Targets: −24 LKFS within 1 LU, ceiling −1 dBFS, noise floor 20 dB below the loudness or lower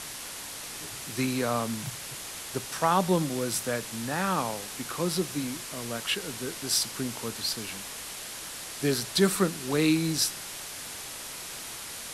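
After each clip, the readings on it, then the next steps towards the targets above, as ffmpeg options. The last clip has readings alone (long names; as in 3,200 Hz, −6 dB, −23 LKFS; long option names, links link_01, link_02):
background noise floor −40 dBFS; target noise floor −50 dBFS; integrated loudness −30.0 LKFS; sample peak −10.0 dBFS; target loudness −24.0 LKFS
→ -af "afftdn=noise_reduction=10:noise_floor=-40"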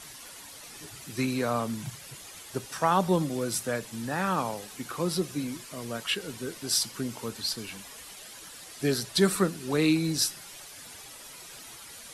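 background noise floor −46 dBFS; target noise floor −49 dBFS
→ -af "afftdn=noise_reduction=6:noise_floor=-46"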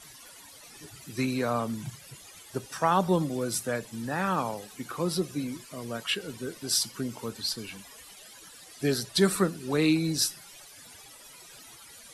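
background noise floor −50 dBFS; integrated loudness −29.0 LKFS; sample peak −10.0 dBFS; target loudness −24.0 LKFS
→ -af "volume=5dB"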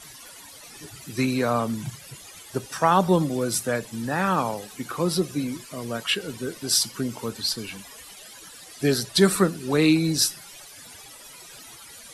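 integrated loudness −24.0 LKFS; sample peak −5.0 dBFS; background noise floor −45 dBFS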